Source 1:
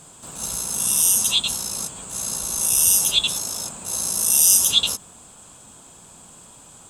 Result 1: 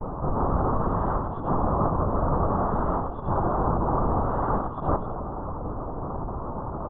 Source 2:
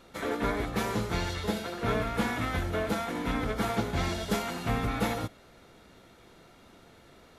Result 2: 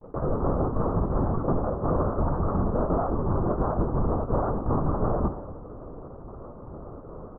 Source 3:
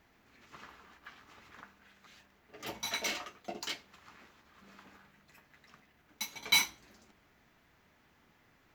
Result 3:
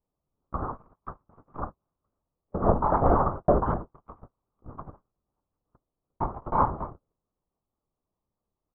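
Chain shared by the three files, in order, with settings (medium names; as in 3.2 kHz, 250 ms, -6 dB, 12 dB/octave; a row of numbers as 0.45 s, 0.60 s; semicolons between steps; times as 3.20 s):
square wave that keeps the level; delay 267 ms -22.5 dB; LPC vocoder at 8 kHz whisper; reverse; compression 4:1, threshold -34 dBFS; reverse; elliptic low-pass 1.2 kHz, stop band 50 dB; gate -52 dBFS, range -42 dB; tape noise reduction on one side only decoder only; normalise loudness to -27 LUFS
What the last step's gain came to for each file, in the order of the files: +16.0 dB, +12.0 dB, +20.5 dB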